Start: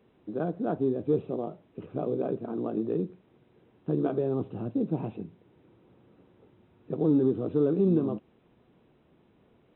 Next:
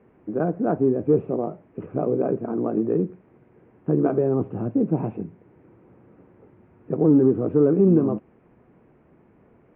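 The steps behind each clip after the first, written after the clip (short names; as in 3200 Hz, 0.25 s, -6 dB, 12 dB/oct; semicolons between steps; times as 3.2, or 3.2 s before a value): steep low-pass 2300 Hz 36 dB/oct; gain +7 dB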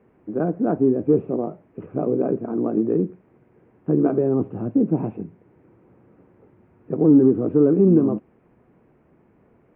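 dynamic EQ 270 Hz, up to +5 dB, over -29 dBFS, Q 1.2; gain -1.5 dB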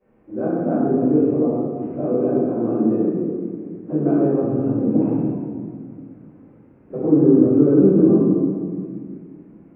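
reverb RT60 2.0 s, pre-delay 3 ms, DRR -19 dB; gain -18 dB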